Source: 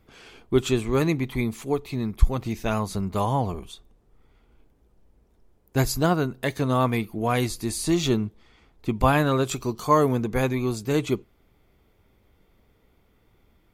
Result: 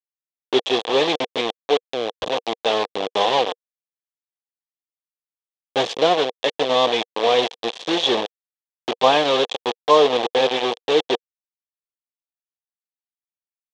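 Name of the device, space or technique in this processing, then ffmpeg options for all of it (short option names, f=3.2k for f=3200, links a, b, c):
hand-held game console: -af "acrusher=bits=3:mix=0:aa=0.000001,highpass=460,equalizer=f=480:t=q:w=4:g=9,equalizer=f=760:t=q:w=4:g=4,equalizer=f=1.4k:t=q:w=4:g=-10,equalizer=f=2.1k:t=q:w=4:g=-5,equalizer=f=3.4k:t=q:w=4:g=9,equalizer=f=4.8k:t=q:w=4:g=-5,lowpass=f=5k:w=0.5412,lowpass=f=5k:w=1.3066,volume=4.5dB"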